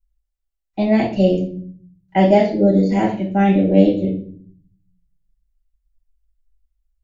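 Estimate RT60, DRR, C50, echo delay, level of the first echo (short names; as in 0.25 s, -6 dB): 0.50 s, -5.0 dB, 7.0 dB, none, none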